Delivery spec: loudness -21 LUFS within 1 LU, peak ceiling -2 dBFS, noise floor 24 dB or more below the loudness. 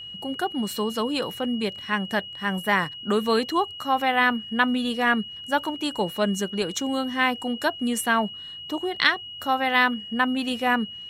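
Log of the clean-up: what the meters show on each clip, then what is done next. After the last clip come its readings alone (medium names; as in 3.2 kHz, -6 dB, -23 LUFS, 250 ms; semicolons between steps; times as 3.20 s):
steady tone 2.9 kHz; tone level -36 dBFS; loudness -24.5 LUFS; peak level -2.5 dBFS; loudness target -21.0 LUFS
-> band-stop 2.9 kHz, Q 30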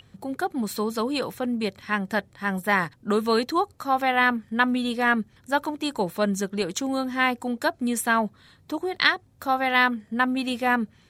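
steady tone not found; loudness -25.0 LUFS; peak level -3.0 dBFS; loudness target -21.0 LUFS
-> trim +4 dB; peak limiter -2 dBFS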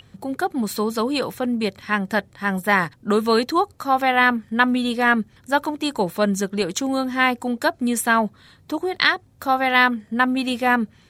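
loudness -21.0 LUFS; peak level -2.0 dBFS; noise floor -54 dBFS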